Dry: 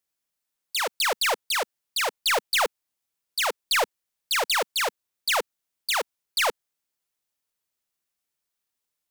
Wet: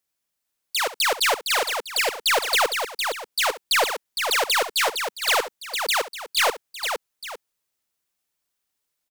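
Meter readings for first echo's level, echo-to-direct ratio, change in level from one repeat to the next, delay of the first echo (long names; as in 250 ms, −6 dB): −15.0 dB, −5.0 dB, repeats not evenly spaced, 67 ms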